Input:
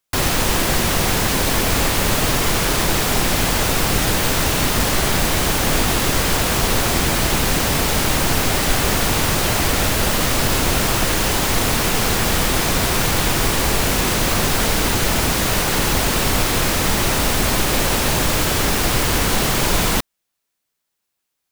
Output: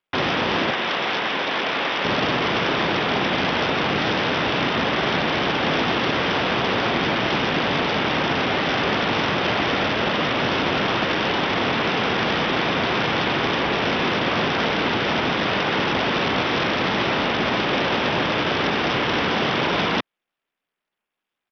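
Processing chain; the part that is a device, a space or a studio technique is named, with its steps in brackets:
0:00.70–0:02.05: high-pass filter 560 Hz 6 dB per octave
Bluetooth headset (high-pass filter 180 Hz 12 dB per octave; downsampling to 8,000 Hz; SBC 64 kbit/s 44,100 Hz)

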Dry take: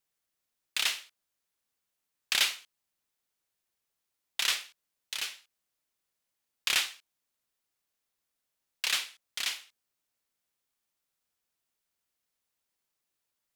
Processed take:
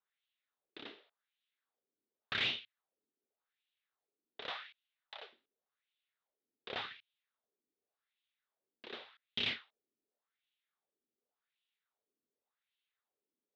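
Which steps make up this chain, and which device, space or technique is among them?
wah-wah guitar rig (LFO wah 0.88 Hz 300–2,900 Hz, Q 2.9; tube saturation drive 39 dB, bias 0.65; loudspeaker in its box 110–4,000 Hz, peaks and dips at 110 Hz +8 dB, 230 Hz +8 dB, 420 Hz +7 dB, 1,000 Hz −3 dB, 2,400 Hz −3 dB, 3,700 Hz +8 dB)
0:04.50–0:05.33: low shelf with overshoot 440 Hz −12.5 dB, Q 1.5
level +8.5 dB

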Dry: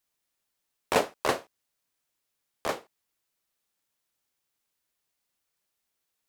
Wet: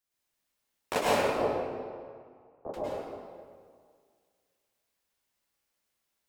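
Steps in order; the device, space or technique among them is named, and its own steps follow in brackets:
0:01.18–0:02.74: inverse Chebyshev low-pass filter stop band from 4,500 Hz, stop band 80 dB
stairwell (convolution reverb RT60 2.0 s, pre-delay 98 ms, DRR −7.5 dB)
level −6.5 dB

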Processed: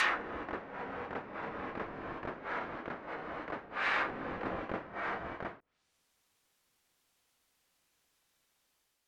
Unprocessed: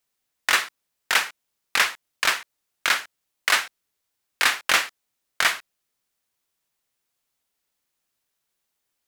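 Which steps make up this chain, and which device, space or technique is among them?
reverse reverb (reversed playback; convolution reverb RT60 2.5 s, pre-delay 102 ms, DRR −2.5 dB; reversed playback)
treble cut that deepens with the level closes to 370 Hz, closed at −20.5 dBFS
high-shelf EQ 8,700 Hz −5.5 dB
level +1.5 dB

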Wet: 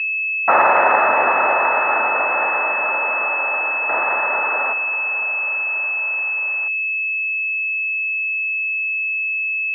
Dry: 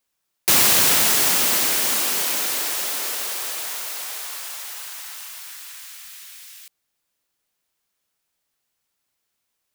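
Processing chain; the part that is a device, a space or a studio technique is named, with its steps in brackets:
0:03.89–0:04.73: high-shelf EQ 5,000 Hz +9.5 dB
toy sound module (linearly interpolated sample-rate reduction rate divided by 8×; switching amplifier with a slow clock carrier 2,600 Hz; loudspeaker in its box 540–4,600 Hz, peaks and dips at 600 Hz +7 dB, 880 Hz +9 dB, 1,300 Hz +9 dB, 1,800 Hz +10 dB, 2,600 Hz +5 dB, 3,800 Hz −5 dB)
level +1.5 dB

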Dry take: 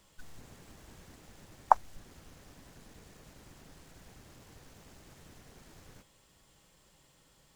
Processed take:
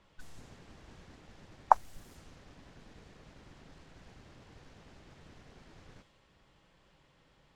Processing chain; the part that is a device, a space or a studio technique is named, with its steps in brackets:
cassette deck with a dynamic noise filter (white noise bed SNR 27 dB; low-pass that shuts in the quiet parts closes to 2,500 Hz, open at −40 dBFS)

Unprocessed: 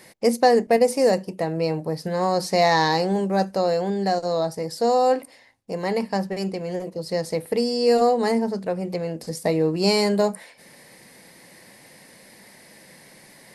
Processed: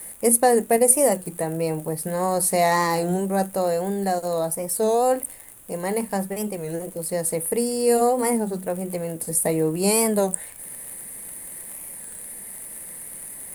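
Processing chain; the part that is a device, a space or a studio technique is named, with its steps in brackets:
warped LP (wow of a warped record 33 1/3 rpm, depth 160 cents; surface crackle 61 per second −33 dBFS; pink noise bed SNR 32 dB)
high shelf with overshoot 7,200 Hz +13 dB, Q 3
level −1 dB

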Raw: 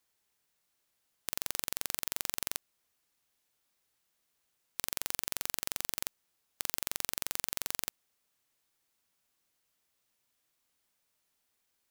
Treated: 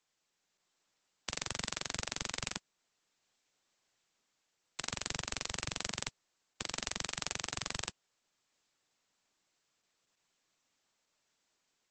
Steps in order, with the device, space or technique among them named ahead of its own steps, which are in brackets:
0:07.04–0:07.69: high-pass filter 230 Hz → 68 Hz 6 dB per octave
noise-suppressed video call (high-pass filter 120 Hz 24 dB per octave; gate on every frequency bin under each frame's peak −25 dB strong; automatic gain control gain up to 3.5 dB; Opus 12 kbit/s 48,000 Hz)

